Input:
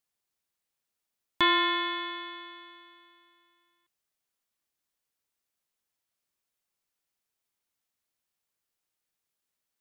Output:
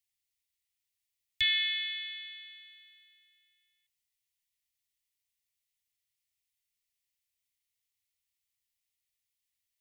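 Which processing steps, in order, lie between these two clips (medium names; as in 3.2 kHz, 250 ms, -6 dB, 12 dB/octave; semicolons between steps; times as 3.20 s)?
Chebyshev band-stop 120–1900 Hz, order 5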